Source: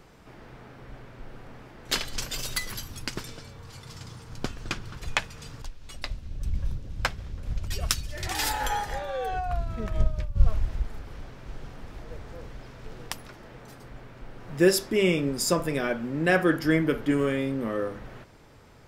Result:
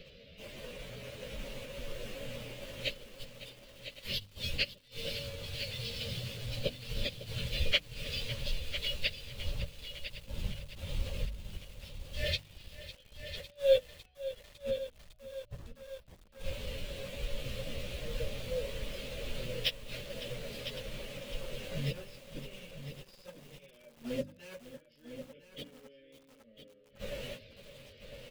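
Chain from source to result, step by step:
stylus tracing distortion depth 0.031 ms
gate with flip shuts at −23 dBFS, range −32 dB
drawn EQ curve 230 Hz 0 dB, 340 Hz −9 dB, 570 Hz +11 dB, 820 Hz −25 dB, 1,300 Hz −14 dB, 2,800 Hz +12 dB, 4,400 Hz +8 dB, 6,300 Hz −9 dB, 9,100 Hz −16 dB, 14,000 Hz −4 dB
in parallel at −4 dB: bit reduction 7 bits
on the sum: mains-hum notches 50/100/150/200/250/300 Hz
time stretch by phase vocoder 1.5×
on a send: single-tap delay 1,003 ms −10.5 dB
on the sum: feedback echo at a low word length 554 ms, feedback 80%, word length 8 bits, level −14 dB

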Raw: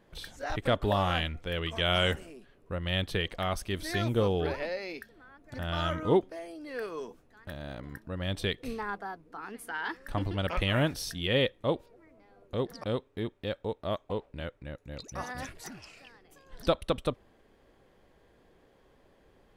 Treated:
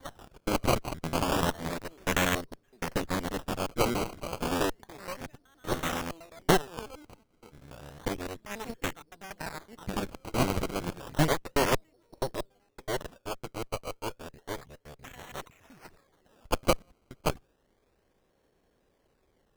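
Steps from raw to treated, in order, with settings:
slices reordered back to front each 94 ms, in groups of 5
dynamic equaliser 140 Hz, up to +6 dB, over −48 dBFS, Q 2.2
harmonic generator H 3 −13 dB, 6 −11 dB, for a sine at −10.5 dBFS
sample-and-hold swept by an LFO 17×, swing 100% 0.31 Hz
level +2 dB

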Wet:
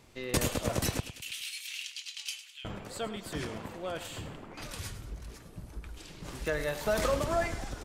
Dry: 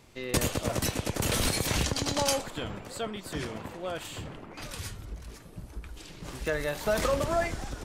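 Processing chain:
0:01.00–0:02.65: four-pole ladder high-pass 2,400 Hz, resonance 60%
repeating echo 104 ms, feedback 38%, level −13.5 dB
level −2 dB

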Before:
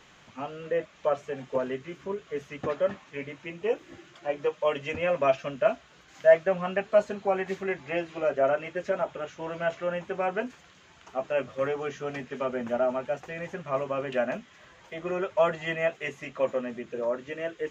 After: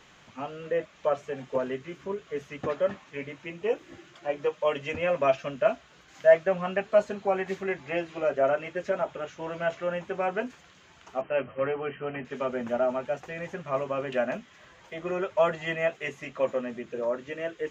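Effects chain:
0:11.21–0:12.25: linear-phase brick-wall low-pass 3,200 Hz

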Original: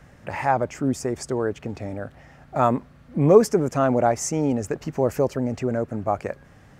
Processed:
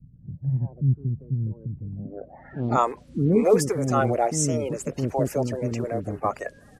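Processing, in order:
spectral magnitudes quantised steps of 30 dB
multiband delay without the direct sound lows, highs 160 ms, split 380 Hz
low-pass filter sweep 140 Hz → 11,000 Hz, 0:01.96–0:02.90

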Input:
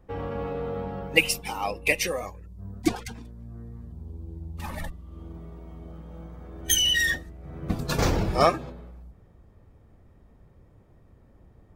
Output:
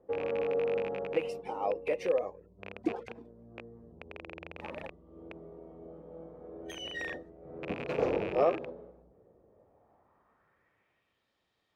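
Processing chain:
loose part that buzzes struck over −33 dBFS, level −11 dBFS
brickwall limiter −13 dBFS, peak gain reduction 10 dB
band-pass filter sweep 480 Hz → 3,700 Hz, 0:09.46–0:11.28
level +4.5 dB

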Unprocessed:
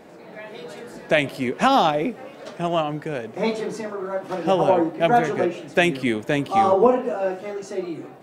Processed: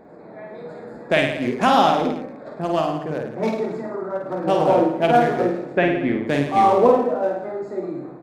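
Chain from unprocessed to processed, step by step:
adaptive Wiener filter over 15 samples
0:05.74–0:06.24: low-pass filter 1,900 Hz 12 dB per octave
reverse bouncing-ball delay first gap 50 ms, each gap 1.1×, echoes 5

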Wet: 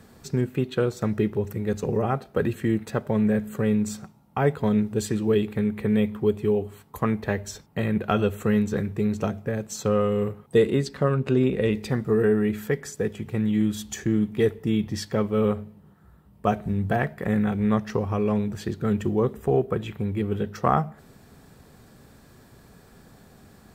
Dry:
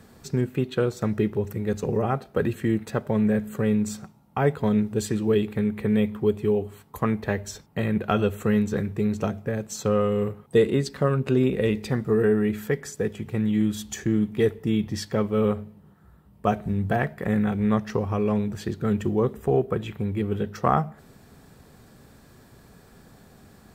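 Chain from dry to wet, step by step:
0:10.85–0:11.73: high-shelf EQ 9,300 Hz −7.5 dB

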